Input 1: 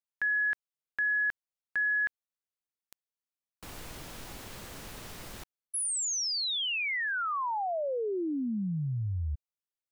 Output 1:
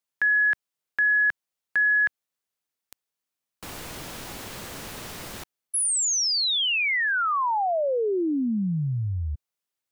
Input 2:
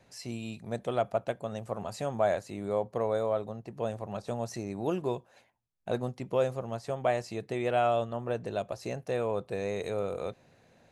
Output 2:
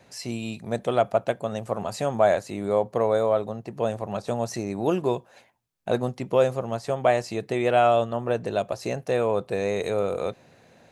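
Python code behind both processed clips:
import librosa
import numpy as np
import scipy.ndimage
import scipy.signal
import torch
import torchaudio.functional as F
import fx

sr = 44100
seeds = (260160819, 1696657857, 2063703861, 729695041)

y = fx.low_shelf(x, sr, hz=66.0, db=-9.5)
y = y * 10.0 ** (7.5 / 20.0)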